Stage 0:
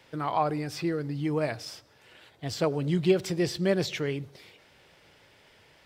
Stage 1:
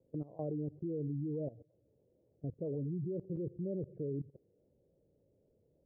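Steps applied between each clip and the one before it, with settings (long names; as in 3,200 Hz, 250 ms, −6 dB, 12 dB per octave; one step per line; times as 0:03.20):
gate on every frequency bin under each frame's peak −20 dB strong
Chebyshev low-pass filter 540 Hz, order 4
output level in coarse steps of 18 dB
level −1 dB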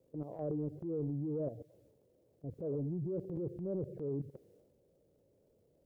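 low-shelf EQ 410 Hz −7.5 dB
transient designer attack −6 dB, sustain +7 dB
level +6 dB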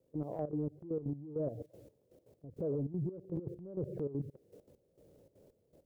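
downward compressor 2 to 1, threshold −47 dBFS, peak gain reduction 8 dB
gate pattern "..xxxx.xx...x.x." 199 BPM −12 dB
level +9 dB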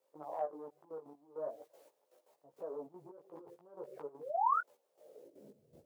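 sound drawn into the spectrogram rise, 0:04.20–0:04.61, 440–1,500 Hz −39 dBFS
high-pass filter sweep 930 Hz → 100 Hz, 0:04.92–0:05.74
multi-voice chorus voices 4, 0.43 Hz, delay 16 ms, depth 4.6 ms
level +6 dB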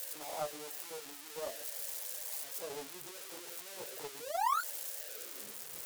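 spike at every zero crossing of −29 dBFS
highs frequency-modulated by the lows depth 0.73 ms
level −1 dB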